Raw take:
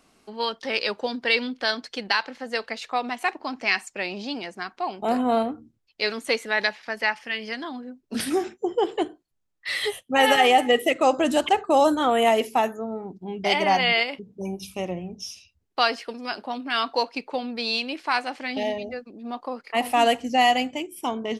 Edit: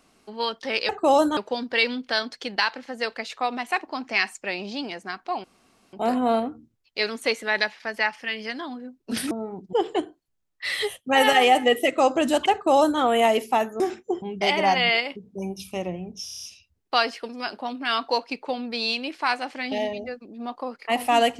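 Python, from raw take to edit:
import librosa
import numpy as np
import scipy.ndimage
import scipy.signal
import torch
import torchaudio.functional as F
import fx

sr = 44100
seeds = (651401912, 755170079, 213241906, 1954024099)

y = fx.edit(x, sr, fx.insert_room_tone(at_s=4.96, length_s=0.49),
    fx.swap(start_s=8.34, length_s=0.42, other_s=12.83, other_length_s=0.42),
    fx.duplicate(start_s=11.55, length_s=0.48, to_s=0.89),
    fx.stutter(start_s=15.28, slice_s=0.03, count=7), tone=tone)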